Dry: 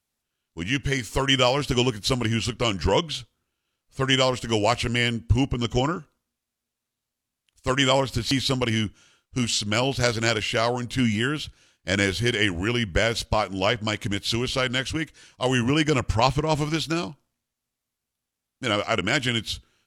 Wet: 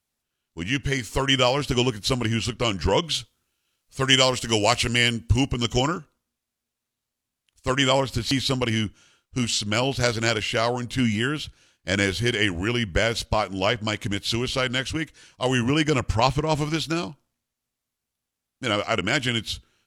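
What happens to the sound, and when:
3.03–5.98 s: treble shelf 2.6 kHz +8 dB

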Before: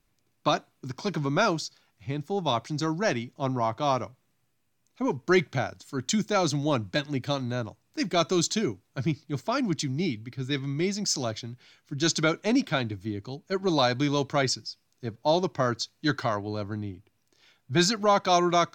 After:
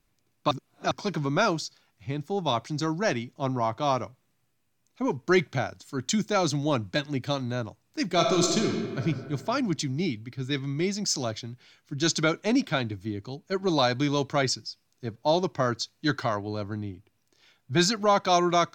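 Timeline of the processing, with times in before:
0.51–0.91 s: reverse
8.06–9.04 s: reverb throw, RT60 1.8 s, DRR 1.5 dB

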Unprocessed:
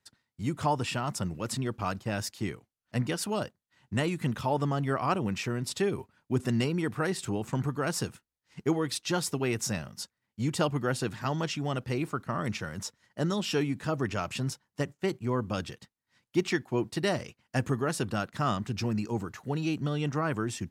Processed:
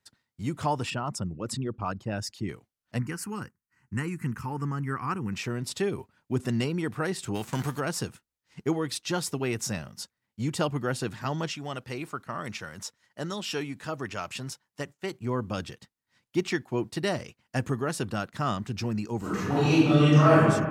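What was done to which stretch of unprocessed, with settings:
0.90–2.49 s: resonances exaggerated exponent 1.5
2.99–5.33 s: static phaser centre 1.5 kHz, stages 4
7.34–7.79 s: formants flattened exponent 0.6
11.53–15.18 s: bass shelf 460 Hz -7.5 dB
19.19–20.39 s: reverb throw, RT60 1.5 s, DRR -10.5 dB

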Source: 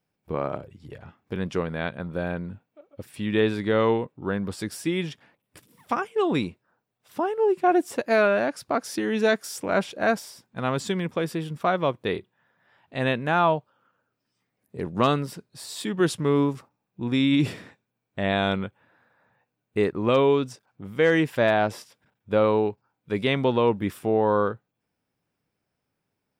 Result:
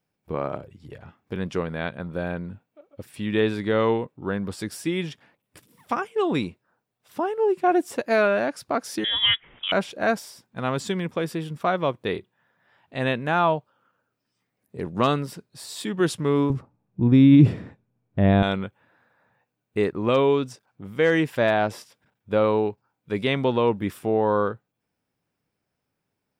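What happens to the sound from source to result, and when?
9.04–9.72 s: frequency inversion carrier 3.6 kHz
16.50–18.43 s: tilt EQ -4 dB/octave

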